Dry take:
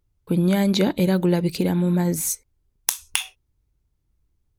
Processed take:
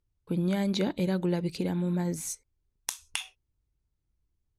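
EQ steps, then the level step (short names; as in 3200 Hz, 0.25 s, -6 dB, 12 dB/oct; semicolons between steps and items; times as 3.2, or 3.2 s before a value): LPF 9200 Hz 12 dB/oct; -8.5 dB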